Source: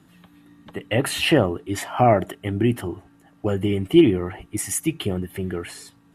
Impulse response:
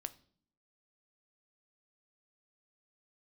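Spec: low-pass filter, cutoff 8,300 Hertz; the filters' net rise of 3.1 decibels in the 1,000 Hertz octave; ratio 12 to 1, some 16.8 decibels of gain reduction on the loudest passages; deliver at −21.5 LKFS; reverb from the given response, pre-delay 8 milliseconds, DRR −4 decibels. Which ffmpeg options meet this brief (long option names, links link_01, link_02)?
-filter_complex "[0:a]lowpass=8300,equalizer=frequency=1000:width_type=o:gain=5,acompressor=threshold=-26dB:ratio=12,asplit=2[link_01][link_02];[1:a]atrim=start_sample=2205,adelay=8[link_03];[link_02][link_03]afir=irnorm=-1:irlink=0,volume=7dB[link_04];[link_01][link_04]amix=inputs=2:normalize=0,volume=5.5dB"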